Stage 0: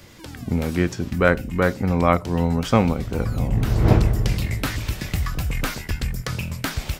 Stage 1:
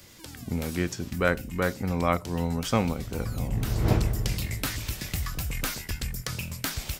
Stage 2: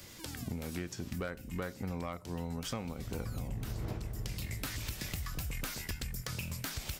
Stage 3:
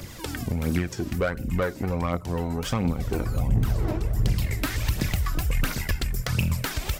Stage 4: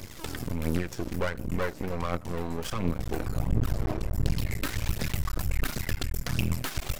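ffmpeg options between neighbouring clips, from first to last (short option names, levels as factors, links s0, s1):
-af "highshelf=f=3900:g=10.5,volume=0.422"
-af "acompressor=threshold=0.02:ratio=20,volume=28.2,asoftclip=hard,volume=0.0355"
-filter_complex "[0:a]aphaser=in_gain=1:out_gain=1:delay=3.3:decay=0.5:speed=1.4:type=triangular,asplit=2[s0][s1];[s1]adynamicsmooth=sensitivity=8:basefreq=2000,volume=0.944[s2];[s0][s2]amix=inputs=2:normalize=0,volume=2"
-af "aeval=exprs='max(val(0),0)':c=same"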